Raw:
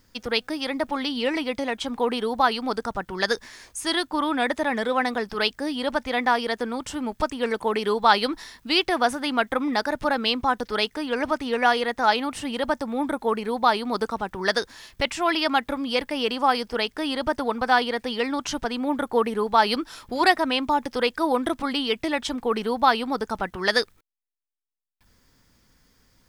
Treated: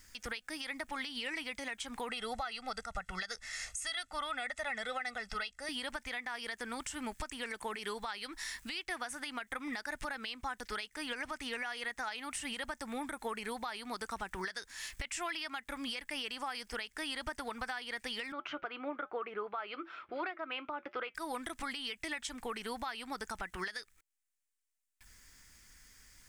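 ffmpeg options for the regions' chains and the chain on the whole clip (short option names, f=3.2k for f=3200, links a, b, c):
-filter_complex "[0:a]asettb=1/sr,asplit=3[a][b][c];[a]atrim=end=2.094[d];[b]atrim=start=2.09:end=5.69,asetpts=PTS-STARTPTS,afade=t=in:d=0.004:c=qsin,afade=t=out:st=3.596:d=0.004:c=qsin,lowpass=8.5k,aecho=1:1:1.5:0.86,atrim=end_sample=158760[e];[c]atrim=start=5.686[f];[d][e]acrossfade=d=0.004:c1=hsin:c2=qsin[g];[g][f]acrossfade=d=0.004:c1=qsin:c2=hsin,asettb=1/sr,asplit=3[h][i][j];[h]atrim=end=18.324[k];[i]atrim=start=18.32:end=21.15,asetpts=PTS-STARTPTS,afade=t=in:d=0.004:c=qsin,afade=t=out:st=2.826:d=0.004:c=qsin,highpass=200,equalizer=f=230:t=q:w=4:g=-10,equalizer=f=350:t=q:w=4:g=7,equalizer=f=600:t=q:w=4:g=6,equalizer=f=910:t=q:w=4:g=-5,equalizer=f=1.3k:t=q:w=4:g=8,equalizer=f=1.8k:t=q:w=4:g=-9,lowpass=f=2.6k:w=0.5412,lowpass=f=2.6k:w=1.3066,flanger=delay=3.9:depth=1:regen=-80:speed=1.1:shape=triangular[l];[j]atrim=start=21.146[m];[k][l]acrossfade=d=0.004:c1=hsin:c2=qsin[n];[n][m]acrossfade=d=0.004:c1=qsin:c2=hsin,equalizer=f=125:t=o:w=1:g=-9,equalizer=f=250:t=o:w=1:g=-7,equalizer=f=500:t=o:w=1:g=-9,equalizer=f=1k:t=o:w=1:g=-5,equalizer=f=2k:t=o:w=1:g=6,equalizer=f=4k:t=o:w=1:g=-4,equalizer=f=8k:t=o:w=1:g=9,acompressor=threshold=-36dB:ratio=6,alimiter=level_in=6dB:limit=-24dB:level=0:latency=1:release=111,volume=-6dB,volume=1.5dB"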